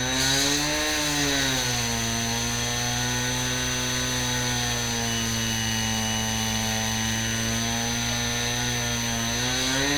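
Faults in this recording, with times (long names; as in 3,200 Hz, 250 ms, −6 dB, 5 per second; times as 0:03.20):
whistle 6,100 Hz −31 dBFS
0:00.55–0:01.19: clipping −20.5 dBFS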